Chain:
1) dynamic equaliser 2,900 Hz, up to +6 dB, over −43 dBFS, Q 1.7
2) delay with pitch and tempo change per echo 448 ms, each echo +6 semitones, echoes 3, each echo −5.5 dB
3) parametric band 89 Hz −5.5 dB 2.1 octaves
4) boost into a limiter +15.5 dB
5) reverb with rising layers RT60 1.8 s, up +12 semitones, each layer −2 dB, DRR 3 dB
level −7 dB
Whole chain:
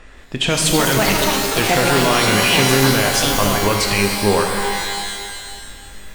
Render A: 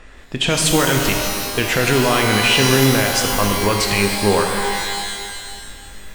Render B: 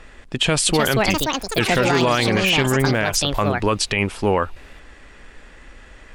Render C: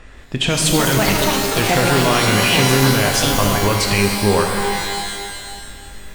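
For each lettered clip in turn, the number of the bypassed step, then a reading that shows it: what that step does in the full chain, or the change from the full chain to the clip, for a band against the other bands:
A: 2, change in momentary loudness spread +1 LU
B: 5, change in momentary loudness spread −8 LU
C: 3, 125 Hz band +3.5 dB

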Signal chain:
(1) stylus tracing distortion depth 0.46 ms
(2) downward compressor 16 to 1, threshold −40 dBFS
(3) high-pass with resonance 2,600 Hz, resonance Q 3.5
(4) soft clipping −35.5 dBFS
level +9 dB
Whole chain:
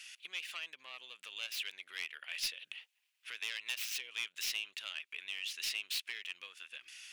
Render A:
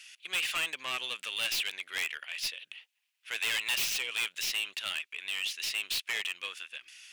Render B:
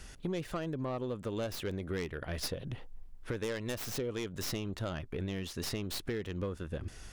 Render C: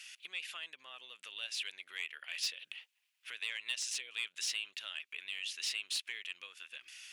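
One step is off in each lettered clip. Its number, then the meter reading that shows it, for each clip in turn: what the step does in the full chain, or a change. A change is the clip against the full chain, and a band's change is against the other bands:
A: 2, average gain reduction 10.0 dB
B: 3, 500 Hz band +30.0 dB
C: 1, 8 kHz band +3.0 dB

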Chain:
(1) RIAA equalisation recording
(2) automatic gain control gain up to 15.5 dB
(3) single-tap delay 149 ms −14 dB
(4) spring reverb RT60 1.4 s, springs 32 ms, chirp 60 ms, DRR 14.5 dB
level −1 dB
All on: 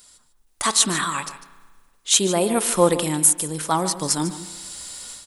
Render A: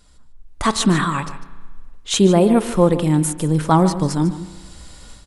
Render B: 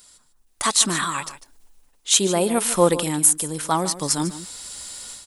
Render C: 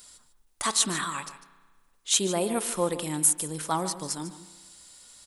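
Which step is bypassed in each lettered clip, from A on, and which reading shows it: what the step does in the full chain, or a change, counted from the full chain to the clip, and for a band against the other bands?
1, 8 kHz band −12.0 dB
4, echo-to-direct ratio −11.0 dB to −14.0 dB
2, change in integrated loudness −7.0 LU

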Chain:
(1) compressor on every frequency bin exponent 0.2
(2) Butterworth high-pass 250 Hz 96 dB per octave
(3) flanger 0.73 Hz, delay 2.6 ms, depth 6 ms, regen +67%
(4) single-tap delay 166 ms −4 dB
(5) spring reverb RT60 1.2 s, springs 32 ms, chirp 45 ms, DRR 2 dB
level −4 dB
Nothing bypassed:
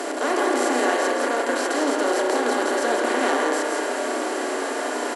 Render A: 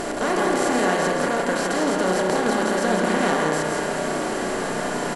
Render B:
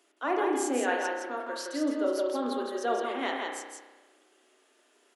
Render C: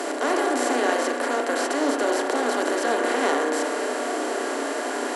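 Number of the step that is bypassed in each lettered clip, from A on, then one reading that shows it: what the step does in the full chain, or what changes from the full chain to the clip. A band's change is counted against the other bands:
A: 2, 250 Hz band +2.5 dB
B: 1, 250 Hz band +4.0 dB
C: 4, echo-to-direct ratio 1.5 dB to −2.0 dB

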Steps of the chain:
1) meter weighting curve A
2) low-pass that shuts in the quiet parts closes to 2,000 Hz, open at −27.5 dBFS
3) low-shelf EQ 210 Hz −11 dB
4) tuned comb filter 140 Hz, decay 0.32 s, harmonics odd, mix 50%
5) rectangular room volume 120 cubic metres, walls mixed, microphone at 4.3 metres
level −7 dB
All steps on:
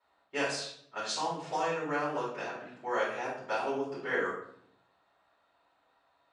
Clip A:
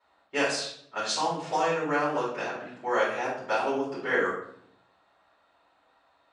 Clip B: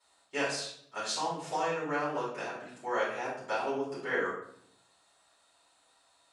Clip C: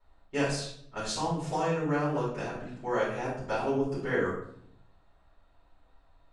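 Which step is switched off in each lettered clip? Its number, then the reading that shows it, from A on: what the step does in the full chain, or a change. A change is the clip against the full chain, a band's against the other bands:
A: 4, change in integrated loudness +5.5 LU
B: 2, 8 kHz band +1.5 dB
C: 1, 125 Hz band +13.0 dB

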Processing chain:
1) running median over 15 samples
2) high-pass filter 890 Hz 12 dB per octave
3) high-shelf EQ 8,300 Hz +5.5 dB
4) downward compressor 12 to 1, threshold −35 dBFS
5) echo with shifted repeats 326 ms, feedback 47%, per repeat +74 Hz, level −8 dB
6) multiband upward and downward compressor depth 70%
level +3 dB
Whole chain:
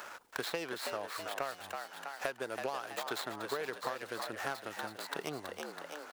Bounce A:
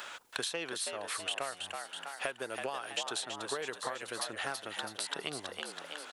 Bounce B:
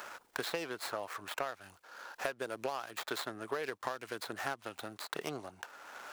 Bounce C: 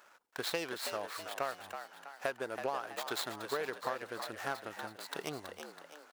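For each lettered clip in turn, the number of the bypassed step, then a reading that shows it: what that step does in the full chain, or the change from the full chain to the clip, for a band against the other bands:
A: 1, 8 kHz band +9.0 dB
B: 5, change in momentary loudness spread +5 LU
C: 6, change in momentary loudness spread +4 LU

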